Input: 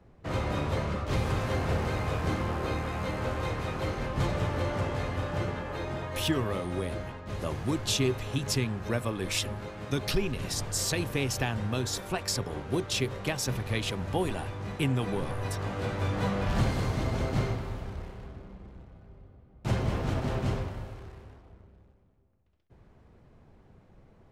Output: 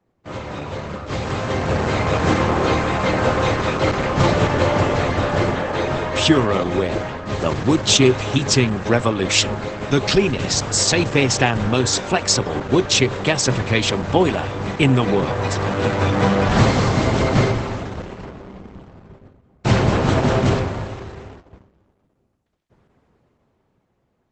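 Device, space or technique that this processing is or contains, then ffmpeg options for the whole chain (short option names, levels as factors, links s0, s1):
video call: -af "highpass=f=150:p=1,dynaudnorm=f=200:g=17:m=5.01,agate=range=0.316:threshold=0.00794:ratio=16:detection=peak,volume=1.33" -ar 48000 -c:a libopus -b:a 12k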